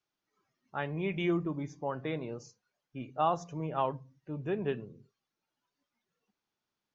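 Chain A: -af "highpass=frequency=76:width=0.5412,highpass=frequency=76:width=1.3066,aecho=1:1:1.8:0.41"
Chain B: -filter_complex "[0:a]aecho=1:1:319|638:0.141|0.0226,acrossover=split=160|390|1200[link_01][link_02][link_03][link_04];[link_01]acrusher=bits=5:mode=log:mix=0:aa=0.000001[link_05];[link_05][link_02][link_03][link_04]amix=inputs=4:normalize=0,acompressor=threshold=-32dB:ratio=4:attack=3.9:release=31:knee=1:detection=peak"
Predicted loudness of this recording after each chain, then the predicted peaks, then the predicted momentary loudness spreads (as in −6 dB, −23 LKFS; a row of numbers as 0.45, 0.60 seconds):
−34.5, −38.0 LKFS; −16.5, −23.0 dBFS; 15, 12 LU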